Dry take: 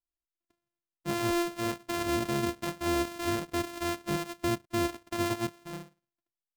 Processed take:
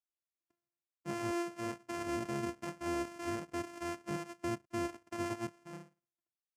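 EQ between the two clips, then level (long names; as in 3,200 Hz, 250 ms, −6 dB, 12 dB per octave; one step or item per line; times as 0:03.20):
high-pass filter 90 Hz
low-pass filter 9,000 Hz 12 dB per octave
parametric band 3,800 Hz −11.5 dB 0.44 octaves
−7.0 dB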